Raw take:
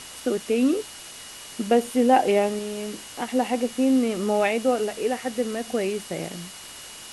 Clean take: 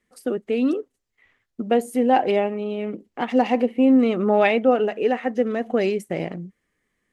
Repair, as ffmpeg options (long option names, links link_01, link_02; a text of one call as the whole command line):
ffmpeg -i in.wav -af "bandreject=frequency=2900:width=30,afwtdn=0.011,asetnsamples=nb_out_samples=441:pad=0,asendcmd='2.59 volume volume 4.5dB',volume=0dB" out.wav